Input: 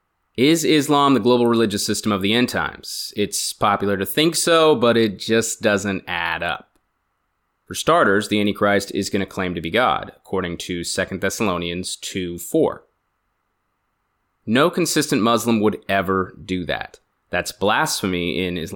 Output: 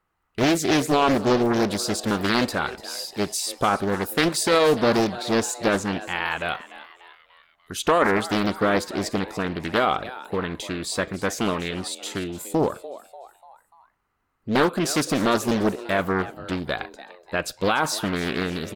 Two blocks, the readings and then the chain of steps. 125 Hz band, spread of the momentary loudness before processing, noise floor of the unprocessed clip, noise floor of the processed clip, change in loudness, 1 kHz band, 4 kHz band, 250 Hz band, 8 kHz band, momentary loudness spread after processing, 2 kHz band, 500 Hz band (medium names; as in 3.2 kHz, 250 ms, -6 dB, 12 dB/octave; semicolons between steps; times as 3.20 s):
-3.0 dB, 11 LU, -71 dBFS, -69 dBFS, -4.0 dB, -3.0 dB, -5.0 dB, -4.0 dB, -4.5 dB, 11 LU, -3.5 dB, -4.0 dB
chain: frequency-shifting echo 294 ms, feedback 49%, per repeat +130 Hz, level -16 dB; loudspeaker Doppler distortion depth 0.76 ms; trim -4 dB